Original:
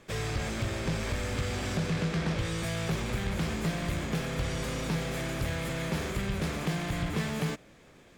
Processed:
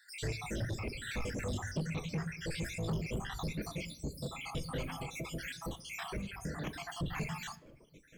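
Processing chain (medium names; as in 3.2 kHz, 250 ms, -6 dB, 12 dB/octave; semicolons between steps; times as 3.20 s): random holes in the spectrogram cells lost 71%; 4.82–6.97 s: compression, threshold -36 dBFS, peak gain reduction 9 dB; reverberation RT60 0.85 s, pre-delay 6 ms, DRR 5.5 dB; companded quantiser 8-bit; saturation -31 dBFS, distortion -11 dB; reverb removal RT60 0.88 s; trim +1.5 dB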